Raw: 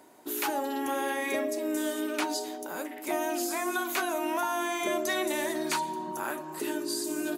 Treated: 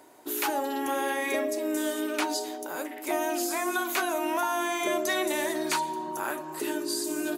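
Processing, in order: bell 200 Hz -14 dB 0.28 oct; gain +2 dB

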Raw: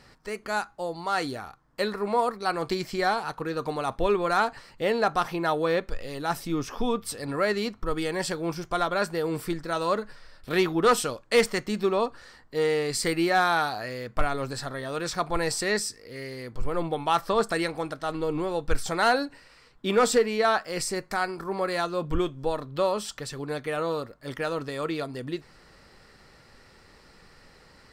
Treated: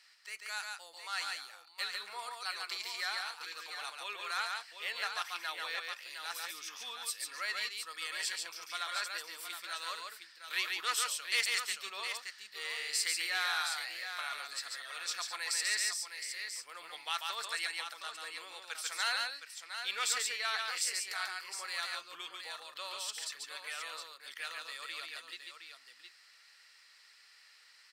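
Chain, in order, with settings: Chebyshev high-pass 2400 Hz, order 2; tapped delay 0.141/0.715 s -3.5/-8 dB; gain -2.5 dB

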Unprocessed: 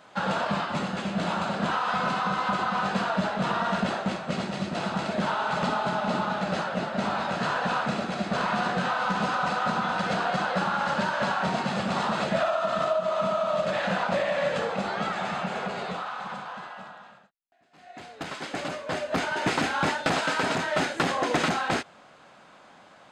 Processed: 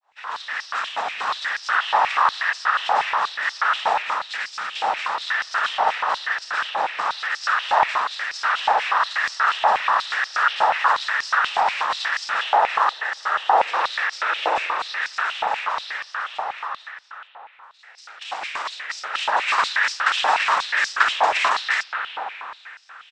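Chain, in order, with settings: opening faded in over 0.73 s; noise vocoder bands 12; spring tank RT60 3.3 s, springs 49/57 ms, chirp 65 ms, DRR 2 dB; harmoniser -7 st -3 dB; stepped high-pass 8.3 Hz 820–5100 Hz; gain +1 dB

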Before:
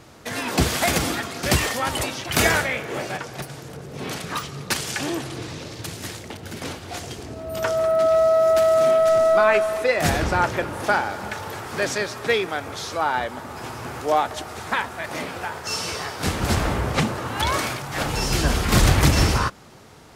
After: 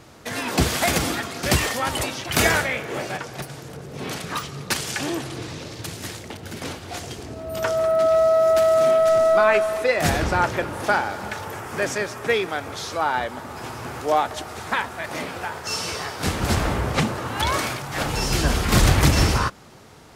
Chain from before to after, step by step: 11.45–12.36 bell 4100 Hz -7.5 dB 0.58 oct

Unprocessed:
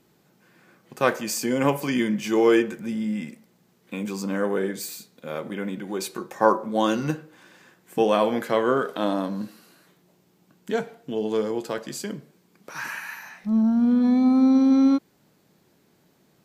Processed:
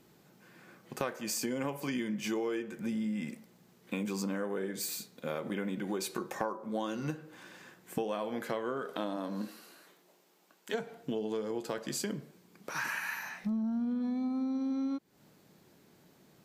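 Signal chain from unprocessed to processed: 9.16–10.73 HPF 200 Hz -> 610 Hz 12 dB/oct; compressor 12:1, threshold -31 dBFS, peak gain reduction 19.5 dB

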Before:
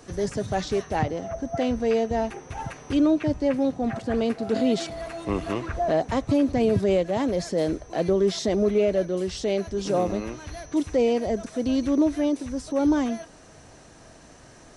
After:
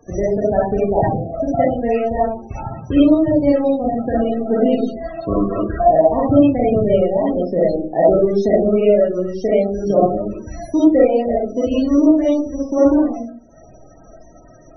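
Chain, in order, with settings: transient shaper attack +10 dB, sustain -9 dB; digital reverb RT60 0.45 s, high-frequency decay 0.35×, pre-delay 10 ms, DRR -6 dB; loudest bins only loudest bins 32; gain -1.5 dB

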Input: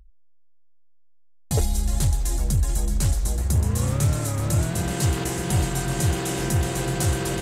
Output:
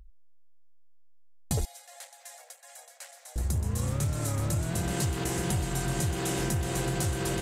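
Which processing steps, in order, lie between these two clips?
compressor, threshold -26 dBFS, peak gain reduction 9.5 dB; 1.65–3.36 rippled Chebyshev high-pass 500 Hz, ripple 9 dB

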